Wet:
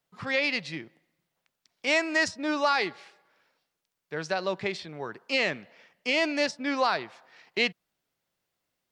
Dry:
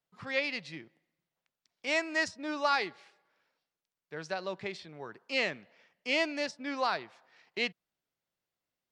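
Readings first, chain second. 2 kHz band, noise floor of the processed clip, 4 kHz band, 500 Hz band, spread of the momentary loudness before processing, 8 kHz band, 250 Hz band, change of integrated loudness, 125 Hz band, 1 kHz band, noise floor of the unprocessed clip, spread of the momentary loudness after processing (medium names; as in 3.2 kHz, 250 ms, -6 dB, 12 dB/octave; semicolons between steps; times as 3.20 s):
+5.5 dB, -83 dBFS, +5.5 dB, +5.5 dB, 17 LU, +6.5 dB, +6.5 dB, +5.0 dB, +7.5 dB, +4.5 dB, under -85 dBFS, 14 LU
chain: peak limiter -21.5 dBFS, peak gain reduction 6.5 dB; trim +7.5 dB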